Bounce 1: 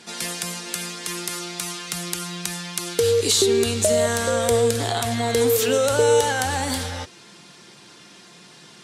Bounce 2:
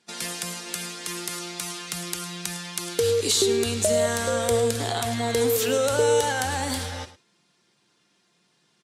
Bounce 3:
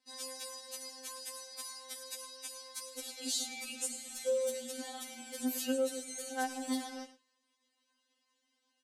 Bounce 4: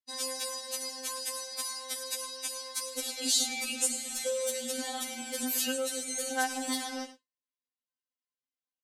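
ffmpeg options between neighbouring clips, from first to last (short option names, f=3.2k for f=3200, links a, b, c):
-af "agate=range=-17dB:threshold=-37dB:ratio=16:detection=peak,aecho=1:1:106:0.158,volume=-3dB"
-filter_complex "[0:a]acrossover=split=510|4200[a][b][c];[b]alimiter=limit=-24dB:level=0:latency=1:release=236[d];[a][d][c]amix=inputs=3:normalize=0,afftfilt=real='re*3.46*eq(mod(b,12),0)':imag='im*3.46*eq(mod(b,12),0)':win_size=2048:overlap=0.75,volume=-9dB"
-filter_complex "[0:a]agate=range=-33dB:threshold=-51dB:ratio=3:detection=peak,acrossover=split=910[a][b];[a]acompressor=threshold=-43dB:ratio=6[c];[c][b]amix=inputs=2:normalize=0,volume=8.5dB"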